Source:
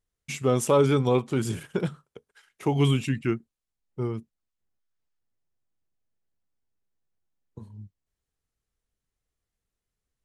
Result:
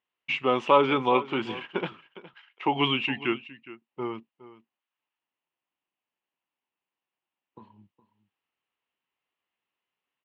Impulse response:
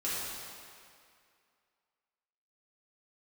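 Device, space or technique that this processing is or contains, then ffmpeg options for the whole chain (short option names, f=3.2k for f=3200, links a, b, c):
phone earpiece: -filter_complex "[0:a]highpass=410,equalizer=f=450:t=q:w=4:g=-8,equalizer=f=630:t=q:w=4:g=-4,equalizer=f=970:t=q:w=4:g=5,equalizer=f=1.5k:t=q:w=4:g=-4,equalizer=f=2.8k:t=q:w=4:g=8,lowpass=f=3.1k:w=0.5412,lowpass=f=3.1k:w=1.3066,asettb=1/sr,asplit=3[a][b][c];[a]atrim=end=1.924[d];[b]atrim=start=1.92:end=2.66,asetpts=PTS-STARTPTS,afade=t=in:d=0.004:c=qsin,afade=t=out:st=0.736:d=0.004:c=qsin,highpass=f=850:p=1[e];[c]atrim=start=2.656[f];[d][e]acrossfade=d=0.004:c1=hsin:c2=qsin[g];[g][f]acrossfade=d=0.004:c1=qsin:c2=hsin,aecho=1:1:414:0.141,volume=5.5dB"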